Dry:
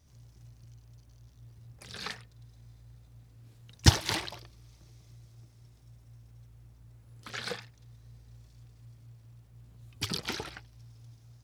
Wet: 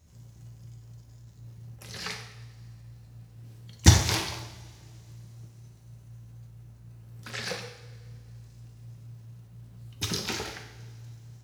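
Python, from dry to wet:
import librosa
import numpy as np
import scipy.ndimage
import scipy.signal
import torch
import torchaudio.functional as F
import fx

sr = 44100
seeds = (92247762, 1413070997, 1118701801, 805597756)

y = fx.rev_double_slope(x, sr, seeds[0], early_s=0.75, late_s=2.2, knee_db=-17, drr_db=2.5)
y = fx.formant_shift(y, sr, semitones=2)
y = y * 10.0 ** (1.5 / 20.0)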